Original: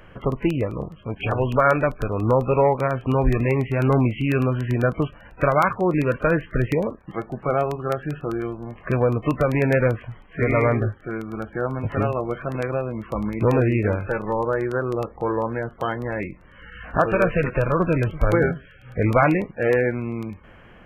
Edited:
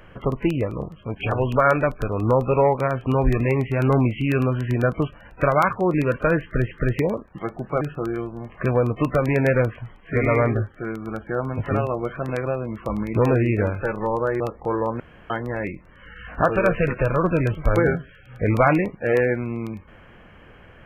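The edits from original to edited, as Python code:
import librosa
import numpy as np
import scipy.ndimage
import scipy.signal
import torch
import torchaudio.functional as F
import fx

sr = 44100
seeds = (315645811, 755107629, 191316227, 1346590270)

y = fx.edit(x, sr, fx.repeat(start_s=6.44, length_s=0.27, count=2),
    fx.cut(start_s=7.54, length_s=0.53),
    fx.cut(start_s=14.66, length_s=0.3),
    fx.room_tone_fill(start_s=15.56, length_s=0.3), tone=tone)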